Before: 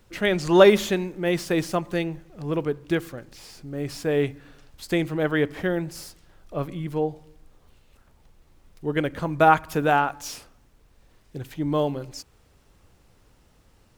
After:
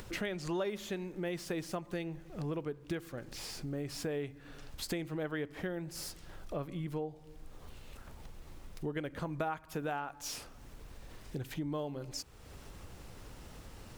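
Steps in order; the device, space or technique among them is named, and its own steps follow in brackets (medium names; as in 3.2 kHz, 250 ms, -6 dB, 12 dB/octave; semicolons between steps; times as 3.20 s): upward and downward compression (upward compressor, threshold -42 dBFS; compression 5:1, threshold -38 dBFS, peak gain reduction 25 dB); trim +1.5 dB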